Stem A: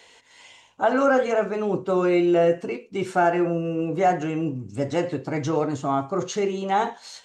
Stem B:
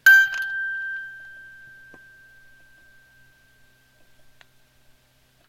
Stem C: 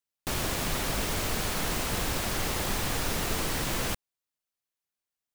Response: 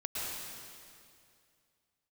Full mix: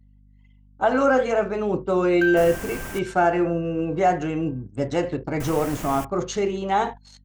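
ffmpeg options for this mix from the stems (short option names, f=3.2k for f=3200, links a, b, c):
-filter_complex "[0:a]volume=0.5dB[a];[1:a]lowpass=f=1.8k:p=1,adelay=2150,volume=-11dB[b];[2:a]equalizer=f=4k:t=o:w=0.62:g=-12,adelay=2100,volume=-4dB,asplit=3[c][d][e];[c]atrim=end=2.99,asetpts=PTS-STARTPTS,afade=t=out:st=2.986:d=0.004:c=hsin[f];[d]atrim=start=2.99:end=5.4,asetpts=PTS-STARTPTS,volume=0[g];[e]atrim=start=5.4,asetpts=PTS-STARTPTS,afade=t=in:d=0.004:c=hsin[h];[f][g][h]concat=n=3:v=0:a=1[i];[a][b][i]amix=inputs=3:normalize=0,anlmdn=0.398,aeval=exprs='val(0)+0.00631*(sin(2*PI*50*n/s)+sin(2*PI*2*50*n/s)/2+sin(2*PI*3*50*n/s)/3+sin(2*PI*4*50*n/s)/4+sin(2*PI*5*50*n/s)/5)':c=same,agate=range=-8dB:threshold=-34dB:ratio=16:detection=peak"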